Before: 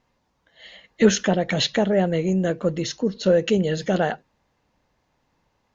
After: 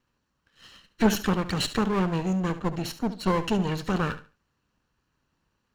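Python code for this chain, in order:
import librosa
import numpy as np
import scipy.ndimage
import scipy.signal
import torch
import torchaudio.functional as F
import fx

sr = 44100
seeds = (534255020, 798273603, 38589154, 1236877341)

p1 = fx.lower_of_two(x, sr, delay_ms=0.7)
p2 = p1 + fx.echo_feedback(p1, sr, ms=71, feedback_pct=24, wet_db=-13.5, dry=0)
y = p2 * 10.0 ** (-4.5 / 20.0)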